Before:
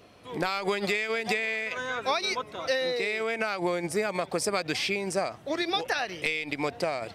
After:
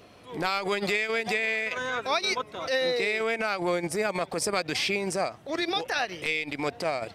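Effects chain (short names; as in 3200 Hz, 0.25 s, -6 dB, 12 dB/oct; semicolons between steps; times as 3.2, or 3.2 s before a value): transient shaper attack -9 dB, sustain -5 dB; gain +3 dB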